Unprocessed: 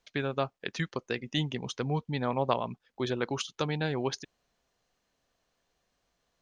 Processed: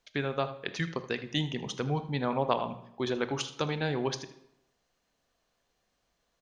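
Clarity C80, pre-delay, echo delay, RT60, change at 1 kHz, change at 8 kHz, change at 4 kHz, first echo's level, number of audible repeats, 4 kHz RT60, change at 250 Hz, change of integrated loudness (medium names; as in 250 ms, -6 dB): 16.5 dB, 21 ms, 78 ms, 0.85 s, +0.5 dB, +0.5 dB, +0.5 dB, -14.5 dB, 1, 0.60 s, 0.0 dB, 0.0 dB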